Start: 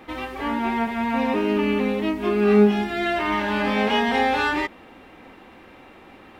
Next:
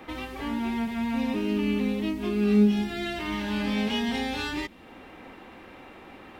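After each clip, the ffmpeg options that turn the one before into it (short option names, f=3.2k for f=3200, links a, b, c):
-filter_complex "[0:a]acrossover=split=280|3000[a][b][c];[b]acompressor=threshold=-40dB:ratio=3[d];[a][d][c]amix=inputs=3:normalize=0"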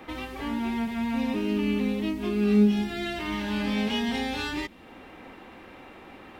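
-af anull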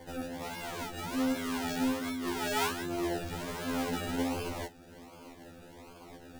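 -af "bandreject=f=60:t=h:w=6,bandreject=f=120:t=h:w=6,bandreject=f=180:t=h:w=6,bandreject=f=240:t=h:w=6,bandreject=f=300:t=h:w=6,bandreject=f=360:t=h:w=6,bandreject=f=420:t=h:w=6,acrusher=samples=33:mix=1:aa=0.000001:lfo=1:lforange=19.8:lforate=1.3,afftfilt=real='re*2*eq(mod(b,4),0)':imag='im*2*eq(mod(b,4),0)':win_size=2048:overlap=0.75,volume=-1.5dB"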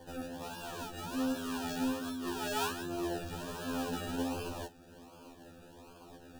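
-af "asuperstop=centerf=2100:order=8:qfactor=4.1,volume=-3dB"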